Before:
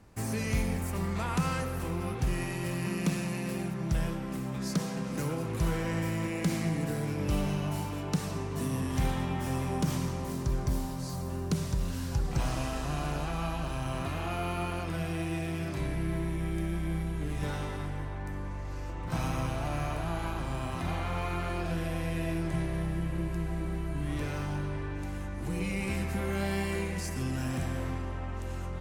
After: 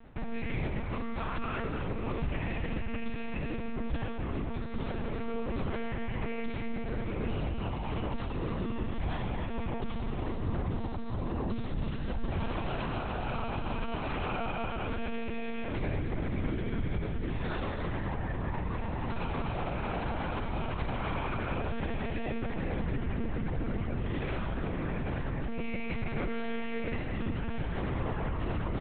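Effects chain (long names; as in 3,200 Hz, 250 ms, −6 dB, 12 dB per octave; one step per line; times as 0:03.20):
brickwall limiter −29.5 dBFS, peak gain reduction 10.5 dB
single-tap delay 271 ms −11.5 dB
on a send at −15 dB: convolution reverb RT60 3.1 s, pre-delay 27 ms
on the sum: one-pitch LPC vocoder at 8 kHz 230 Hz
level +4.5 dB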